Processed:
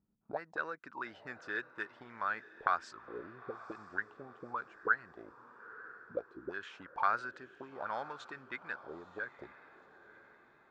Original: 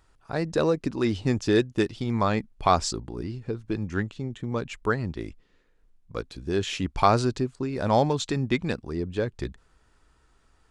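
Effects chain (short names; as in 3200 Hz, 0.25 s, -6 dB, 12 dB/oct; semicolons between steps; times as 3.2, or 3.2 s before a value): auto-wah 200–1500 Hz, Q 6.8, up, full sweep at -23 dBFS; diffused feedback echo 0.932 s, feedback 45%, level -16 dB; gain +3 dB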